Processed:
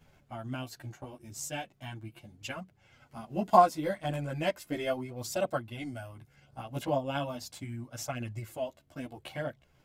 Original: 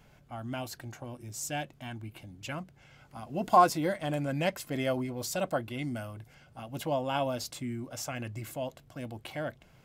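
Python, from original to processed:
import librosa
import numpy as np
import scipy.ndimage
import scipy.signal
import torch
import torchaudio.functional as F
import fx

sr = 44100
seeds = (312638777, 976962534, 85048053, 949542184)

y = fx.transient(x, sr, attack_db=5, sustain_db=-5)
y = fx.chorus_voices(y, sr, voices=2, hz=0.37, base_ms=12, depth_ms=3.6, mix_pct=55)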